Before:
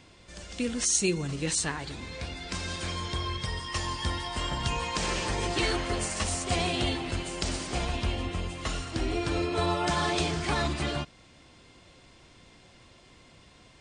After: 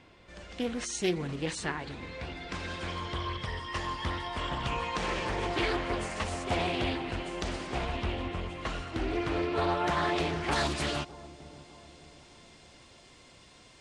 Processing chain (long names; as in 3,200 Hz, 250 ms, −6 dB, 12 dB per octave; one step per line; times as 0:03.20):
bass and treble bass −4 dB, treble −13 dB, from 0:10.51 treble +4 dB
delay with a low-pass on its return 604 ms, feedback 46%, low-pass 780 Hz, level −16.5 dB
highs frequency-modulated by the lows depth 0.36 ms